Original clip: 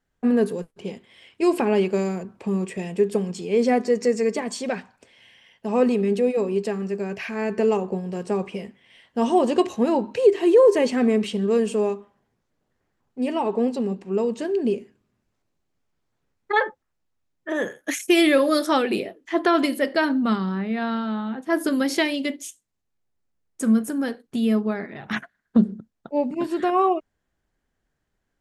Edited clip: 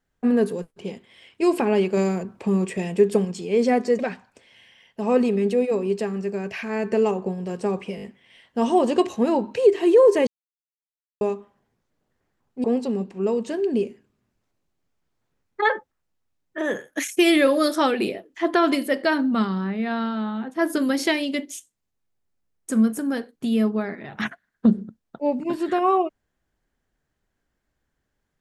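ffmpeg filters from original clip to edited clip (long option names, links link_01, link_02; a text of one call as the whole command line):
ffmpeg -i in.wav -filter_complex "[0:a]asplit=10[link_01][link_02][link_03][link_04][link_05][link_06][link_07][link_08][link_09][link_10];[link_01]atrim=end=1.972[link_11];[link_02]atrim=start=1.968:end=3.252,asetpts=PTS-STARTPTS,volume=3dB[link_12];[link_03]atrim=start=3.248:end=3.992[link_13];[link_04]atrim=start=4.648:end=8.642[link_14];[link_05]atrim=start=8.618:end=8.642[link_15];[link_06]atrim=start=8.618:end=8.642[link_16];[link_07]atrim=start=8.618:end=10.87,asetpts=PTS-STARTPTS,afade=type=out:start_time=2.248:duration=0.004:curve=hsin[link_17];[link_08]atrim=start=10.87:end=11.81,asetpts=PTS-STARTPTS,volume=0[link_18];[link_09]atrim=start=11.81:end=13.242,asetpts=PTS-STARTPTS,afade=type=in:duration=0.004:curve=hsin[link_19];[link_10]atrim=start=13.548[link_20];[link_11][link_12]acrossfade=duration=0.004:curve1=hsin:curve2=hsin[link_21];[link_21][link_13]acrossfade=duration=0.004:curve1=hsin:curve2=hsin[link_22];[link_22][link_14]acrossfade=duration=0.004:curve1=hsin:curve2=hsin[link_23];[link_23][link_15]acrossfade=duration=0.004:curve1=hsin:curve2=hsin[link_24];[link_24][link_16]acrossfade=duration=0.004:curve1=hsin:curve2=hsin[link_25];[link_17][link_18][link_19]concat=n=3:v=0:a=1[link_26];[link_25][link_26]acrossfade=duration=0.004:curve1=hsin:curve2=hsin[link_27];[link_27][link_20]acrossfade=duration=0.004:curve1=hsin:curve2=hsin" out.wav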